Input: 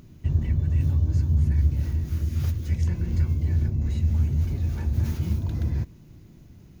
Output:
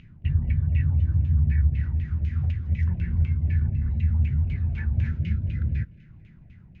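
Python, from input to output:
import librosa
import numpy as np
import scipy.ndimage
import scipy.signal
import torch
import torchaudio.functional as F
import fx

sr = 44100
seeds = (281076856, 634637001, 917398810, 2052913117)

y = fx.filter_lfo_lowpass(x, sr, shape='saw_down', hz=4.0, low_hz=560.0, high_hz=2800.0, q=4.4)
y = fx.spec_box(y, sr, start_s=5.08, length_s=0.98, low_hz=650.0, high_hz=1300.0, gain_db=-13)
y = fx.band_shelf(y, sr, hz=580.0, db=-12.0, octaves=2.5)
y = fx.echo_thinned(y, sr, ms=221, feedback_pct=55, hz=420.0, wet_db=-23.0)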